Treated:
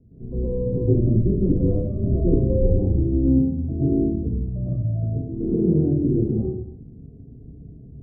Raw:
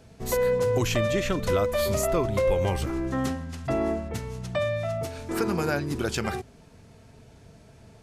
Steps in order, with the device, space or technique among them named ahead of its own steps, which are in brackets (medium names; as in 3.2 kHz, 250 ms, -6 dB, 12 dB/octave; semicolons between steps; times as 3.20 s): next room (low-pass 330 Hz 24 dB/octave; reverberation RT60 0.70 s, pre-delay 104 ms, DRR -10.5 dB)